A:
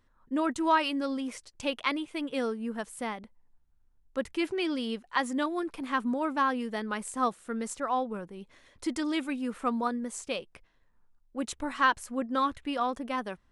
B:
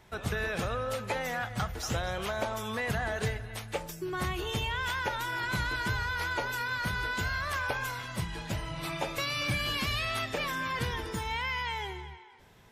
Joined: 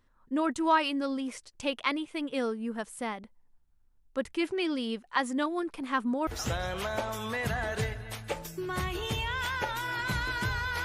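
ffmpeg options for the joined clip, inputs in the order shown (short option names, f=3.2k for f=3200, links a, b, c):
-filter_complex "[0:a]apad=whole_dur=10.84,atrim=end=10.84,atrim=end=6.272[a];[1:a]atrim=start=1.708:end=6.28[b];[a][b]acrossfade=d=0.004:c1=hsin:c2=hsin"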